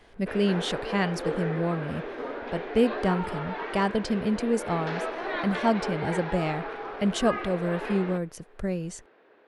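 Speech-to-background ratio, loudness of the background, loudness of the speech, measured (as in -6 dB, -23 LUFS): 5.5 dB, -34.0 LUFS, -28.5 LUFS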